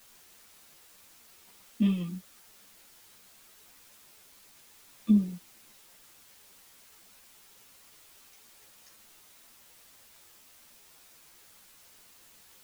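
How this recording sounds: tremolo saw down 0.82 Hz, depth 70%; a quantiser's noise floor 10-bit, dither triangular; a shimmering, thickened sound

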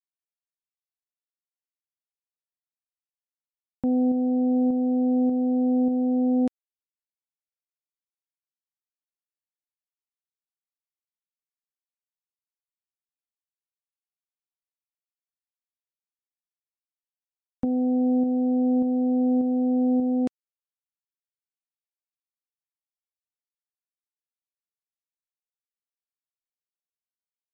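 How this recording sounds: a quantiser's noise floor 12-bit, dither none; tremolo saw up 1.7 Hz, depth 35%; MP3

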